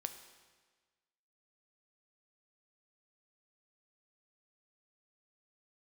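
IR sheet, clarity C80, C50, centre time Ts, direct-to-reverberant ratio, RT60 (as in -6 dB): 11.5 dB, 10.0 dB, 18 ms, 7.5 dB, 1.4 s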